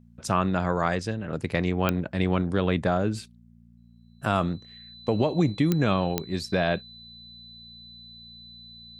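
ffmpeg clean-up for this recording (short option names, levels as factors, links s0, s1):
-af "adeclick=t=4,bandreject=f=58.3:t=h:w=4,bandreject=f=116.6:t=h:w=4,bandreject=f=174.9:t=h:w=4,bandreject=f=233.2:t=h:w=4,bandreject=f=4000:w=30"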